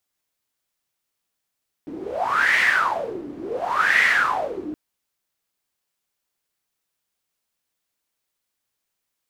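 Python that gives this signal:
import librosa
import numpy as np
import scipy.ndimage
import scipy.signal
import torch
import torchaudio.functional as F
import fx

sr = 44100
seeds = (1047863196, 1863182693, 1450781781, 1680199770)

y = fx.wind(sr, seeds[0], length_s=2.87, low_hz=300.0, high_hz=2000.0, q=11.0, gusts=2, swing_db=16.0)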